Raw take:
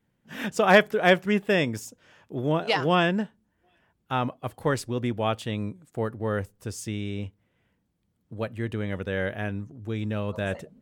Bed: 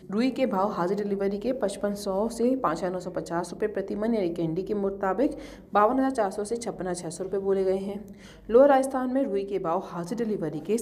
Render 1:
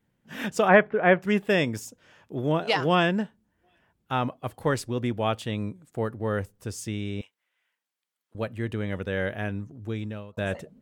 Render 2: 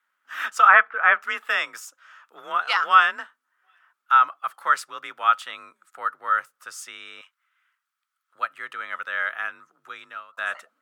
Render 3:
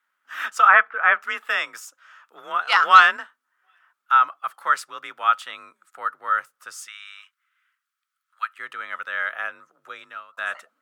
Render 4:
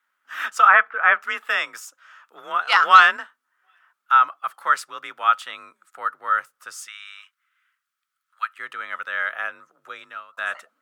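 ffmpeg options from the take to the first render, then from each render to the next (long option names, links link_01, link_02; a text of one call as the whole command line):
ffmpeg -i in.wav -filter_complex "[0:a]asplit=3[link_01][link_02][link_03];[link_01]afade=type=out:start_time=0.67:duration=0.02[link_04];[link_02]lowpass=frequency=2300:width=0.5412,lowpass=frequency=2300:width=1.3066,afade=type=in:start_time=0.67:duration=0.02,afade=type=out:start_time=1.21:duration=0.02[link_05];[link_03]afade=type=in:start_time=1.21:duration=0.02[link_06];[link_04][link_05][link_06]amix=inputs=3:normalize=0,asettb=1/sr,asplit=3[link_07][link_08][link_09];[link_07]atrim=end=7.214[link_10];[link_08]atrim=start=7.21:end=8.35,asetpts=PTS-STARTPTS,afade=type=in:duration=0.004:curve=qsin,afade=type=out:start_time=1.136:duration=0.004:curve=qsin,highpass=1300[link_11];[link_09]atrim=start=8.346[link_12];[link_10][link_11]acrossfade=duration=0.004:curve1=hsin:curve2=qsin[link_13];[link_13][link_12]acrossfade=duration=0.004:curve1=qsin:curve2=hsin,asplit=2[link_14][link_15];[link_14]atrim=end=10.37,asetpts=PTS-STARTPTS,afade=type=out:start_time=9.89:duration=0.48[link_16];[link_15]atrim=start=10.37,asetpts=PTS-STARTPTS,afade=type=in:duration=0.004:curve=hsin[link_17];[link_16][link_17]concat=n=2:v=0:a=1" out.wav
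ffmpeg -i in.wav -af "afreqshift=38,highpass=frequency=1300:width_type=q:width=8.5" out.wav
ffmpeg -i in.wav -filter_complex "[0:a]asettb=1/sr,asplit=3[link_01][link_02][link_03];[link_01]atrim=end=2.724[link_04];[link_02]atrim=start=2.72:end=3.17,asetpts=PTS-STARTPTS,afade=type=in:duration=0.004:curve=qsin,afade=type=out:start_time=0.446:duration=0.004:curve=qsin,acontrast=40[link_05];[link_03]atrim=start=3.166[link_06];[link_04][link_05]acrossfade=duration=0.004:curve1=hsin:curve2=qsin[link_07];[link_07][link_06]acrossfade=duration=0.004:curve1=qsin:curve2=hsin,asplit=3[link_08][link_09][link_10];[link_08]afade=type=out:start_time=6.86:duration=0.02[link_11];[link_09]highpass=frequency=1100:width=0.5412,highpass=frequency=1100:width=1.3066,afade=type=in:start_time=6.86:duration=0.02,afade=type=out:start_time=8.58:duration=0.02[link_12];[link_10]afade=type=in:start_time=8.58:duration=0.02[link_13];[link_11][link_12][link_13]amix=inputs=3:normalize=0,asettb=1/sr,asplit=3[link_14][link_15][link_16];[link_14]atrim=end=9.334[link_17];[link_15]atrim=start=9.33:end=10.03,asetpts=PTS-STARTPTS,afade=type=in:duration=0.004:curve=qsin,afade=type=out:start_time=0.696:duration=0.004:curve=qsin,equalizer=frequency=560:width_type=o:width=0.45:gain=10[link_18];[link_16]atrim=start=10.026[link_19];[link_17][link_18]acrossfade=duration=0.004:curve1=hsin:curve2=qsin[link_20];[link_20][link_19]acrossfade=duration=0.004:curve1=qsin:curve2=hsin" out.wav
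ffmpeg -i in.wav -af "volume=1dB,alimiter=limit=-2dB:level=0:latency=1" out.wav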